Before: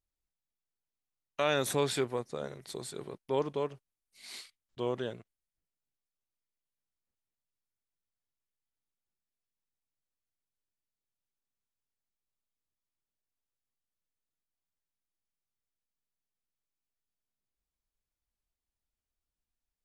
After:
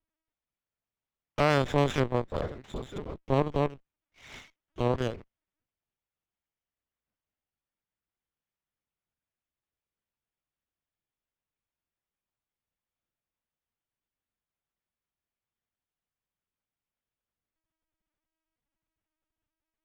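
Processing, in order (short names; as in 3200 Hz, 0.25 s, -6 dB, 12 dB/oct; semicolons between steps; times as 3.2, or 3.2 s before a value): in parallel at -3 dB: limiter -22 dBFS, peak gain reduction 8 dB; on the sum: added harmonics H 4 -12 dB, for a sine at -11.5 dBFS; LPC vocoder at 8 kHz pitch kept; running maximum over 5 samples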